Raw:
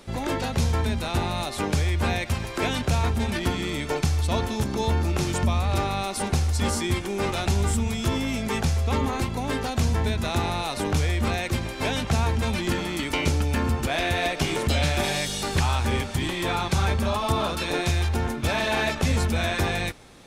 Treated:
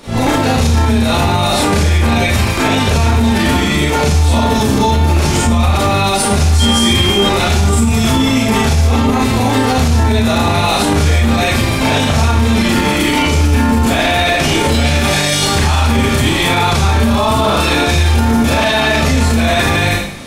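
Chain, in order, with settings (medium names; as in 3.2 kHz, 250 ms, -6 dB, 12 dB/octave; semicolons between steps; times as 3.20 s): Schroeder reverb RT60 0.6 s, combs from 27 ms, DRR -9 dB; peak limiter -12.5 dBFS, peak gain reduction 10.5 dB; 6.59–7.28 s: whistle 3.2 kHz -23 dBFS; trim +8.5 dB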